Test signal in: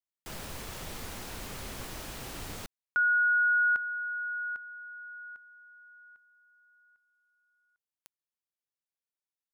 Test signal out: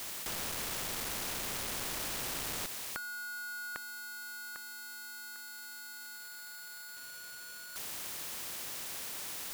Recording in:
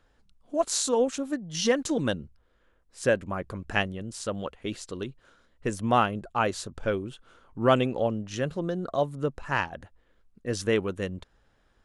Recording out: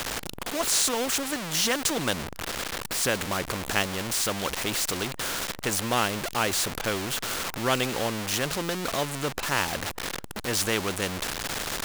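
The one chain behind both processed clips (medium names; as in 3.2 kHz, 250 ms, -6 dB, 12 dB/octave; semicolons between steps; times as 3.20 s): jump at every zero crossing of -35 dBFS; bass shelf 120 Hz -5.5 dB; spectrum-flattening compressor 2:1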